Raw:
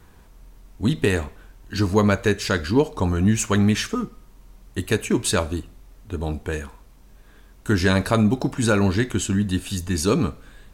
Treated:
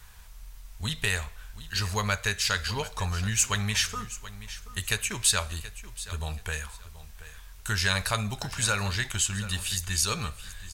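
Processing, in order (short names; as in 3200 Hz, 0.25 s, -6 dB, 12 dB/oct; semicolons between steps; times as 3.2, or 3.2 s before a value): passive tone stack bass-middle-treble 10-0-10; in parallel at 0 dB: compressor, threshold -40 dBFS, peak gain reduction 18 dB; on the sum: feedback echo 0.729 s, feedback 24%, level -15.5 dB; gain +1.5 dB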